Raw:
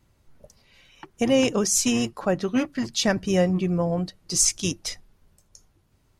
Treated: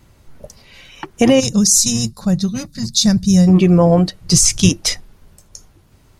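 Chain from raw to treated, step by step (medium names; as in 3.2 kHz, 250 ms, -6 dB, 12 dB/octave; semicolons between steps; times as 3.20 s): 1.40–3.48 s: time-frequency box 220–3500 Hz -18 dB; 4.21–4.69 s: resonant low shelf 200 Hz +9 dB, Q 1.5; loudness maximiser +14.5 dB; trim -1 dB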